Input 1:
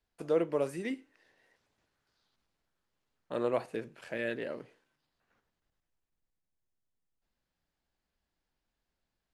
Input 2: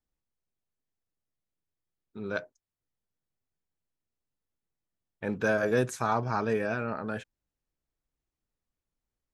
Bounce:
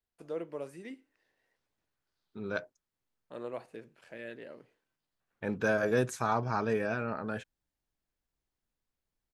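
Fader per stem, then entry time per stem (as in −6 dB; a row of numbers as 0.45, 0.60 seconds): −9.0, −2.0 decibels; 0.00, 0.20 seconds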